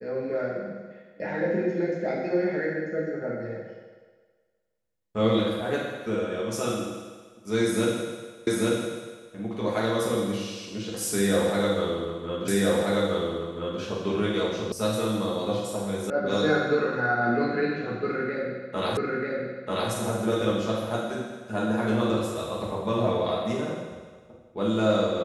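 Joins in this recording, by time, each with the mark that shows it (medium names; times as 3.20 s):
8.47 s: repeat of the last 0.84 s
12.48 s: repeat of the last 1.33 s
14.72 s: sound stops dead
16.10 s: sound stops dead
18.97 s: repeat of the last 0.94 s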